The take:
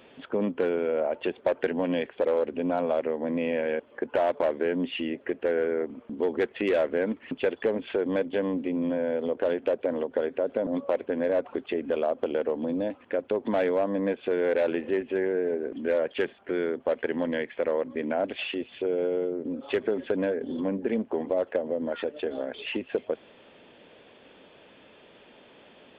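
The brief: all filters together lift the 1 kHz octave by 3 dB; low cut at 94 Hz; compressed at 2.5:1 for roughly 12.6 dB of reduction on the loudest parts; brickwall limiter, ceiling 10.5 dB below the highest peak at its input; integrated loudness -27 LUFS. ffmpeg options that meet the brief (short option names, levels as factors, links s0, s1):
-af "highpass=94,equalizer=f=1000:t=o:g=4.5,acompressor=threshold=0.0112:ratio=2.5,volume=5.01,alimiter=limit=0.141:level=0:latency=1"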